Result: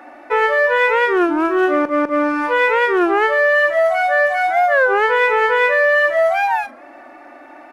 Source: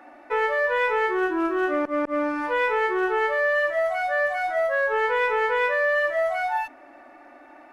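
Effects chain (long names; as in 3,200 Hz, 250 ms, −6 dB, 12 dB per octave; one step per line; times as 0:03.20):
low-shelf EQ 84 Hz −8 dB
double-tracking delay 38 ms −14 dB
wow of a warped record 33 1/3 rpm, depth 160 cents
level +8 dB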